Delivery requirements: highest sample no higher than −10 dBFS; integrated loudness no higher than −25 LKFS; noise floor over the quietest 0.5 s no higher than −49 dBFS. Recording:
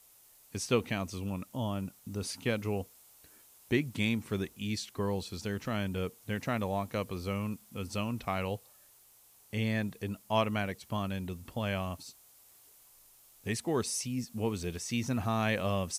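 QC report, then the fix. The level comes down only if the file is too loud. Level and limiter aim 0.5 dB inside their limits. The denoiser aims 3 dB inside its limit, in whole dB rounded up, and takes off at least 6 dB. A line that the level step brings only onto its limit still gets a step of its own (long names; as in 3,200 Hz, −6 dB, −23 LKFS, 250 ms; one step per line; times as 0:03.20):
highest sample −14.5 dBFS: in spec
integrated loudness −34.5 LKFS: in spec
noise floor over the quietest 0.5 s −61 dBFS: in spec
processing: no processing needed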